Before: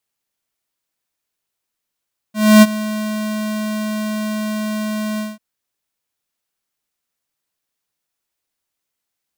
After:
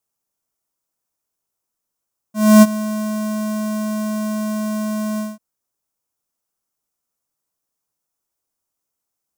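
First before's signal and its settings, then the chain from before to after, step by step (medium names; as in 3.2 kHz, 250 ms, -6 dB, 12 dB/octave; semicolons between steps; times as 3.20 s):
ADSR square 214 Hz, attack 282 ms, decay 35 ms, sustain -17 dB, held 2.85 s, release 192 ms -5 dBFS
high-order bell 2.7 kHz -9 dB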